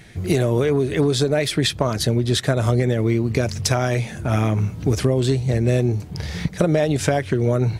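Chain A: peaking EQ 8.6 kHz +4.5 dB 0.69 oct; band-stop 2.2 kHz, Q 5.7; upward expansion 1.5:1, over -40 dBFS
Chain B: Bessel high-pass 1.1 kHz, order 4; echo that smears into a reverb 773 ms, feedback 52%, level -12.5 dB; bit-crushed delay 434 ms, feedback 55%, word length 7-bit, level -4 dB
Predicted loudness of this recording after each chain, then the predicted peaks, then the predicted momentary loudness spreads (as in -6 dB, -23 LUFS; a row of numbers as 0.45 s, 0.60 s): -22.0 LUFS, -28.0 LUFS; -3.0 dBFS, -6.5 dBFS; 5 LU, 10 LU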